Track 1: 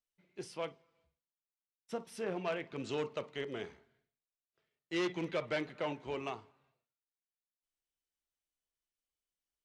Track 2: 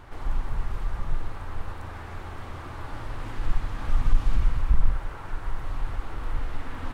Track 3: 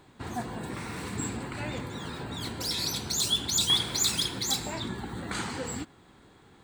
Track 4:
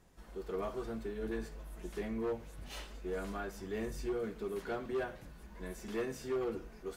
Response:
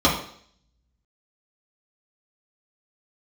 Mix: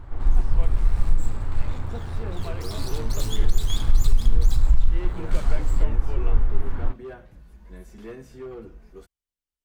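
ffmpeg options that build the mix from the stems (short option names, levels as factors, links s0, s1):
-filter_complex "[0:a]acrossover=split=2800[s0][s1];[s1]acompressor=threshold=0.00158:ratio=4:attack=1:release=60[s2];[s0][s2]amix=inputs=2:normalize=0,volume=0.708[s3];[1:a]lowpass=f=1300:p=1,volume=0.891[s4];[2:a]aeval=exprs='max(val(0),0)':c=same,volume=0.562[s5];[3:a]adynamicequalizer=threshold=0.001:dfrequency=3300:dqfactor=0.7:tfrequency=3300:tqfactor=0.7:attack=5:release=100:ratio=0.375:range=2.5:mode=cutabove:tftype=highshelf,adelay=2100,volume=0.631[s6];[s3][s4][s5][s6]amix=inputs=4:normalize=0,lowshelf=f=150:g=11.5,alimiter=limit=0.447:level=0:latency=1:release=214"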